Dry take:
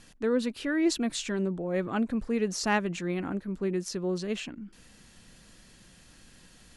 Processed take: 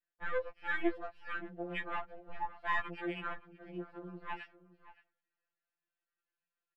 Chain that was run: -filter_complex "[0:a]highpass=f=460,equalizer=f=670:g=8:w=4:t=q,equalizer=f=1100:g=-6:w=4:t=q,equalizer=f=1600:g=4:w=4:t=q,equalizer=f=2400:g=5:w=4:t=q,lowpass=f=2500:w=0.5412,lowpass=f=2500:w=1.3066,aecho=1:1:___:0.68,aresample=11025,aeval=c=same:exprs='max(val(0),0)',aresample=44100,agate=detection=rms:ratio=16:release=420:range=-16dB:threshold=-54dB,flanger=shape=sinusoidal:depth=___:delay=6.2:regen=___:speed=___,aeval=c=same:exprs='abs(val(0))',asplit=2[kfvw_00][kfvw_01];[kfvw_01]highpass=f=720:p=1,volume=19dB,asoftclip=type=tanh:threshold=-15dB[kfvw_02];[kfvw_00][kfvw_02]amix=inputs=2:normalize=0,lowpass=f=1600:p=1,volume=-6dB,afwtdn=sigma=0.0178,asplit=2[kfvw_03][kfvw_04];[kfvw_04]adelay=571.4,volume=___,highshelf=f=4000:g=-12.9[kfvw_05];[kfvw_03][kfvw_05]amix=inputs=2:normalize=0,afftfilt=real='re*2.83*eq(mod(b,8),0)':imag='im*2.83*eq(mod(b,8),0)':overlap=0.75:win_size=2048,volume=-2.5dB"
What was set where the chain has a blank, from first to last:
6.5, 4.9, 40, 1.7, -16dB